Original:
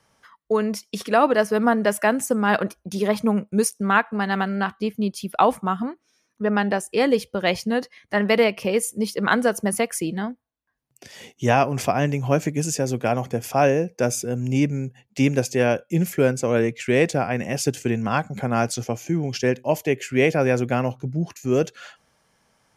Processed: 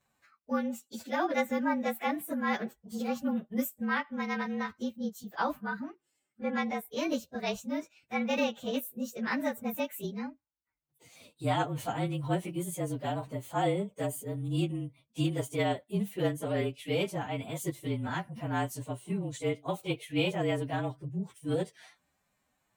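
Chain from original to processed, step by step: inharmonic rescaling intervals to 110%; formant-preserving pitch shift +2.5 st; gain -8.5 dB

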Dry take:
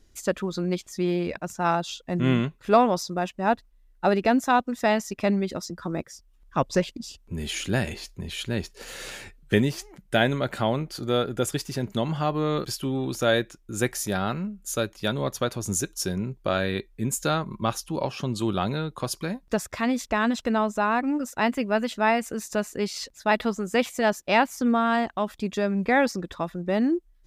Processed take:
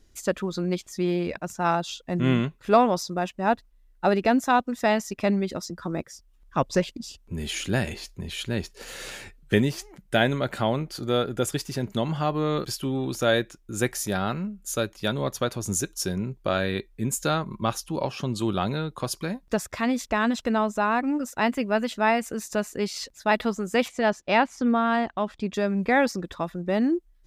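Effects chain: 23.88–25.54 air absorption 77 m

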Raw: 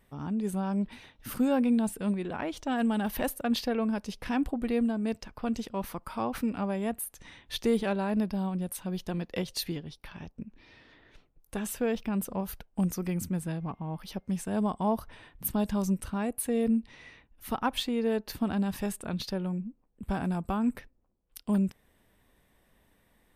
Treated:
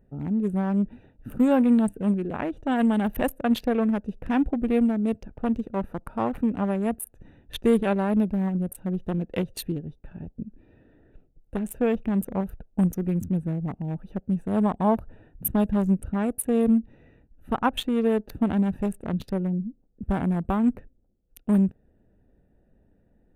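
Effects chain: Wiener smoothing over 41 samples; bell 4900 Hz -13.5 dB 0.64 oct; gain +6.5 dB

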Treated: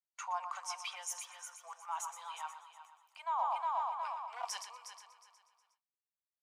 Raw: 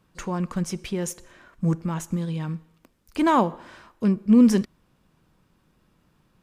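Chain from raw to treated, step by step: on a send: multi-head echo 0.121 s, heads first and third, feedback 54%, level -10 dB; on the sum: wavefolder -9 dBFS; dynamic EQ 1200 Hz, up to -3 dB, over -33 dBFS, Q 0.77; steep high-pass 720 Hz 48 dB/oct; transient shaper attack -2 dB, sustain +2 dB; gate with hold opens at -45 dBFS; reverse; compressor 16:1, threshold -34 dBFS, peak gain reduction 14.5 dB; reverse; bell 1700 Hz -6.5 dB 0.25 oct; spectral expander 1.5:1

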